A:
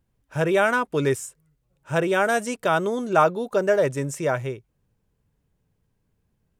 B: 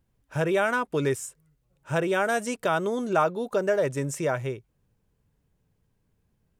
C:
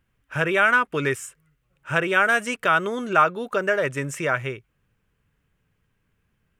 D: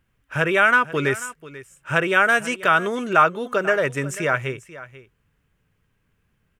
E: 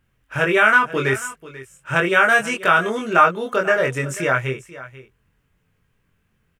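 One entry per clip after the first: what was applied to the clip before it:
compression 1.5:1, threshold -27 dBFS, peak gain reduction 5.5 dB
high-order bell 1.9 kHz +10 dB
delay 489 ms -17 dB; trim +2 dB
doubling 23 ms -2.5 dB

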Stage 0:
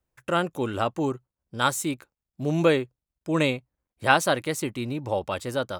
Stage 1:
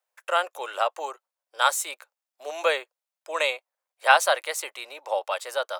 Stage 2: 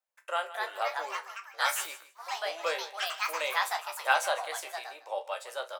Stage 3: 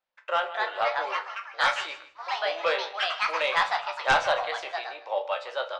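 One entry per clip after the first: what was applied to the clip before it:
steep high-pass 550 Hz 36 dB/octave; trim +2.5 dB
ever faster or slower copies 320 ms, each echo +4 st, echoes 3; chord resonator C2 minor, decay 0.21 s; feedback delay 154 ms, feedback 17%, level -16 dB
low-pass 4.5 kHz 24 dB/octave; sine folder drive 6 dB, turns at -10.5 dBFS; on a send at -11 dB: reverberation RT60 0.60 s, pre-delay 5 ms; on the sum: trim -4 dB

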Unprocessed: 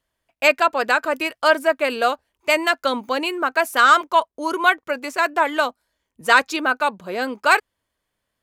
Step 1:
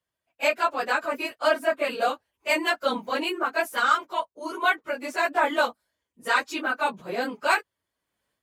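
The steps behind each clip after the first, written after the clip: phase randomisation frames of 50 ms; high-pass 61 Hz; level rider gain up to 10 dB; trim -8.5 dB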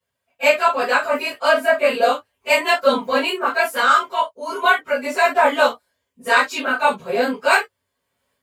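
gated-style reverb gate 80 ms falling, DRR -8 dB; trim -1 dB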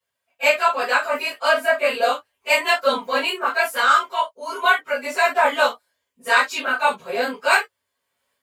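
bass shelf 400 Hz -11 dB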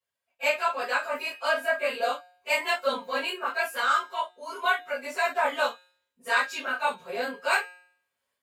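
feedback comb 180 Hz, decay 0.62 s, harmonics all, mix 50%; trim -2.5 dB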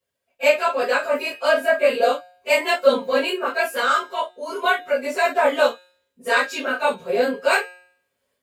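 resonant low shelf 670 Hz +6.5 dB, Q 1.5; trim +5.5 dB

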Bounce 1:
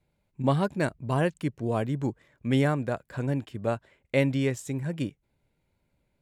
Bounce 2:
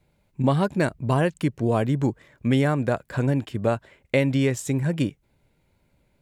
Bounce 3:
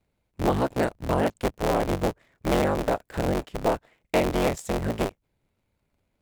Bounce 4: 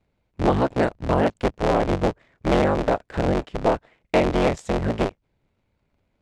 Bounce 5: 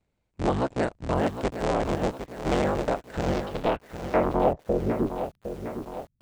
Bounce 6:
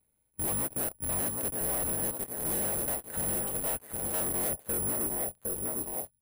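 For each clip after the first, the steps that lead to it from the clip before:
compression 3:1, threshold -26 dBFS, peak gain reduction 6.5 dB; trim +8 dB
cycle switcher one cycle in 3, inverted; dynamic bell 620 Hz, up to +6 dB, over -36 dBFS, Q 0.96; in parallel at -5 dB: small samples zeroed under -32 dBFS; on the sum: trim -9 dB
distance through air 90 m; trim +4 dB
low-pass sweep 8.3 kHz -> 130 Hz, 3.14–5.53 s; bit-crushed delay 759 ms, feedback 55%, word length 7-bit, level -9 dB; trim -5.5 dB
delay 784 ms -23.5 dB; careless resampling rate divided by 4×, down filtered, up zero stuff; slew-rate limiter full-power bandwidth 810 Hz; trim -4.5 dB

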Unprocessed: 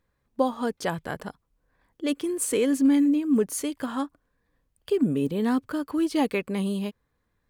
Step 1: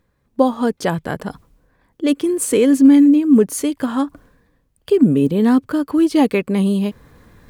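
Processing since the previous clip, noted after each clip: peaking EQ 190 Hz +5 dB 3 oct; reverse; upward compressor, threshold -36 dBFS; reverse; trim +6 dB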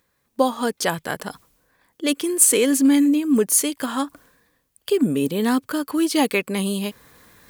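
tilt EQ +3 dB/octave; trim -1 dB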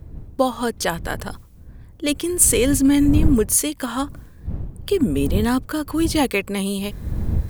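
wind noise 93 Hz -26 dBFS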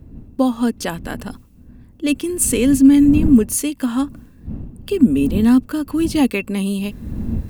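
small resonant body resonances 240/2700 Hz, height 13 dB, ringing for 40 ms; trim -3.5 dB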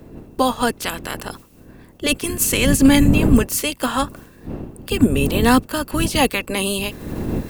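spectral peaks clipped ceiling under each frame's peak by 19 dB; trim -1 dB

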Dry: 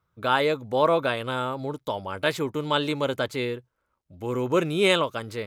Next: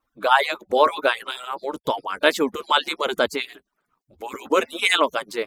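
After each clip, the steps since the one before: harmonic-percussive separation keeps percussive; trim +7 dB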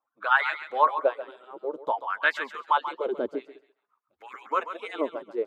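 LFO band-pass sine 0.53 Hz 330–1700 Hz; thinning echo 136 ms, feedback 25%, high-pass 800 Hz, level -9 dB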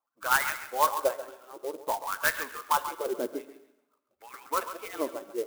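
on a send at -12 dB: reverberation RT60 1.1 s, pre-delay 3 ms; on the sum: sampling jitter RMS 0.048 ms; trim -3 dB

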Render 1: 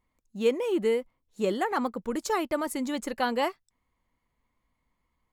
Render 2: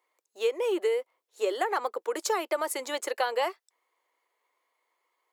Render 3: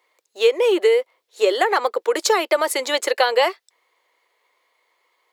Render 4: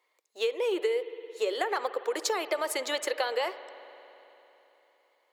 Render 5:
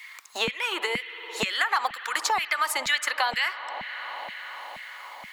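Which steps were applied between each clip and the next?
steep high-pass 370 Hz 48 dB/octave; compression 6:1, threshold -28 dBFS, peak gain reduction 9.5 dB; trim +4.5 dB
graphic EQ 500/2000/4000 Hz +4/+4/+7 dB; trim +7 dB
compression, threshold -17 dBFS, peak gain reduction 7 dB; spring tank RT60 3.5 s, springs 56 ms, chirp 45 ms, DRR 12.5 dB; trim -8 dB
LFO high-pass saw down 2.1 Hz 730–2100 Hz; resonant low shelf 310 Hz +13 dB, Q 3; three bands compressed up and down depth 70%; trim +6 dB

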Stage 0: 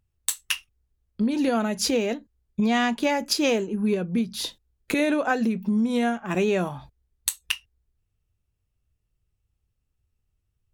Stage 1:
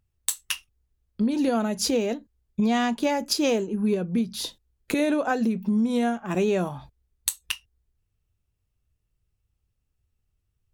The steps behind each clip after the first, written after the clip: dynamic bell 2.1 kHz, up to -5 dB, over -41 dBFS, Q 1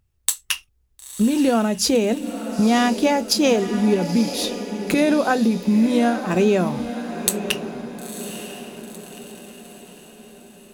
echo that smears into a reverb 959 ms, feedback 50%, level -10 dB; trim +5.5 dB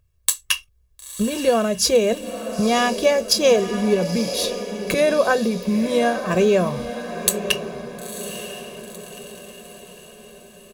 comb 1.8 ms, depth 71%

